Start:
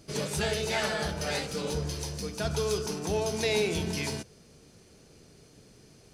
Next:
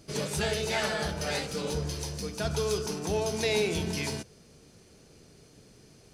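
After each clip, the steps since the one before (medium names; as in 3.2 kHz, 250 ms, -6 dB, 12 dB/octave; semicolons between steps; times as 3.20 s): no audible change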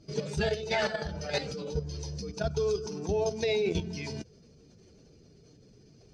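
spectral contrast enhancement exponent 1.5; resonant high shelf 8 kHz -12.5 dB, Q 1.5; level held to a coarse grid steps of 10 dB; trim +3 dB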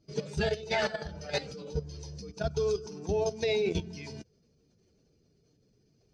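upward expansion 1.5:1, over -49 dBFS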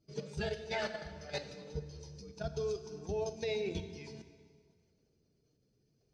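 plate-style reverb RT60 1.9 s, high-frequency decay 0.85×, DRR 9.5 dB; trim -7.5 dB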